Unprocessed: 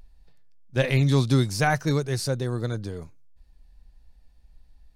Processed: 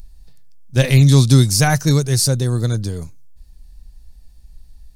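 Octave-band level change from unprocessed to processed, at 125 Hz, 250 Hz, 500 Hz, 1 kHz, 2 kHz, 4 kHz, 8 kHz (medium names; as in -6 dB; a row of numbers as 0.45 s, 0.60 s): +11.0 dB, +8.0 dB, +4.5 dB, +3.5 dB, +4.5 dB, +11.0 dB, +16.0 dB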